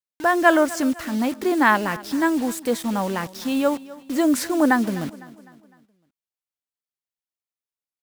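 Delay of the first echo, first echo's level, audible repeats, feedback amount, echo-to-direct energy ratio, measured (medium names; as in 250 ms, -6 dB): 253 ms, -19.0 dB, 3, 46%, -18.0 dB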